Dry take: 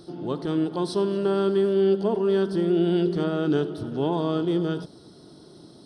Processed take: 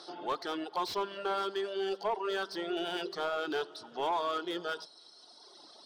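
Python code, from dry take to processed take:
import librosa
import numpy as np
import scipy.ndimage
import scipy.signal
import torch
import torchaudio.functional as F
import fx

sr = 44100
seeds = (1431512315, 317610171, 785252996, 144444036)

p1 = scipy.signal.sosfilt(scipy.signal.cheby1(2, 1.0, [830.0, 5900.0], 'bandpass', fs=sr, output='sos'), x)
p2 = fx.dereverb_blind(p1, sr, rt60_s=1.7)
p3 = fx.rider(p2, sr, range_db=10, speed_s=0.5)
p4 = p2 + F.gain(torch.from_numpy(p3), -2.0).numpy()
p5 = 10.0 ** (-23.5 / 20.0) * np.tanh(p4 / 10.0 ** (-23.5 / 20.0))
p6 = p5 + fx.echo_wet_highpass(p5, sr, ms=514, feedback_pct=51, hz=5100.0, wet_db=-20, dry=0)
y = fx.slew_limit(p6, sr, full_power_hz=57.0)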